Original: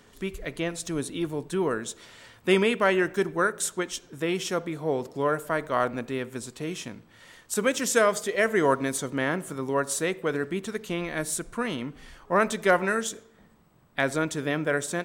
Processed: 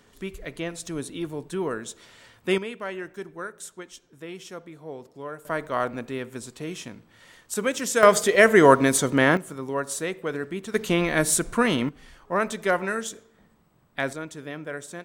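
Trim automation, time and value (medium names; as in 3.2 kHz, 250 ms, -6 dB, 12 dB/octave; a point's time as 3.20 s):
-2 dB
from 2.58 s -11 dB
from 5.45 s -1 dB
from 8.03 s +8 dB
from 9.37 s -2 dB
from 10.74 s +8 dB
from 11.89 s -2 dB
from 14.13 s -8.5 dB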